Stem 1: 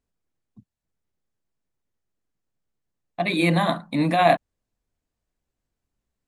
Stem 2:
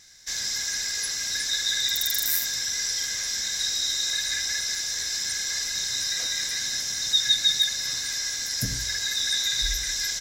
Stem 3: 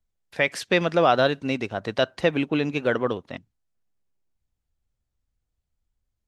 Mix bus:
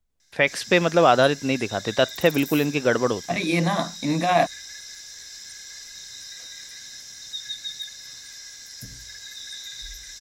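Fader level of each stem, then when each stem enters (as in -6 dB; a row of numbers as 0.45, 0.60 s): -2.0, -12.0, +2.5 dB; 0.10, 0.20, 0.00 s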